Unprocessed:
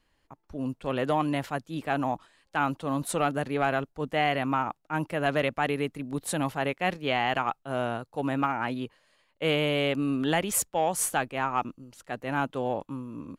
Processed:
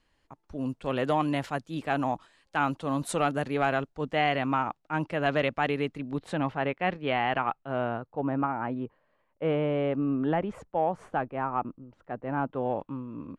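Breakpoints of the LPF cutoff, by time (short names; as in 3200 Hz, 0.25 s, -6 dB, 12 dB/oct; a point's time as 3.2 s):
3.55 s 9400 Hz
4.24 s 5600 Hz
5.95 s 5600 Hz
6.37 s 2600 Hz
7.69 s 2600 Hz
8.28 s 1200 Hz
12.43 s 1200 Hz
12.83 s 2600 Hz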